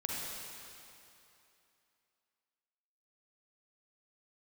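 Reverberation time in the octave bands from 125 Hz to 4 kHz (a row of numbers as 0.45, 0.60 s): 2.5, 2.7, 2.8, 2.9, 2.7, 2.6 s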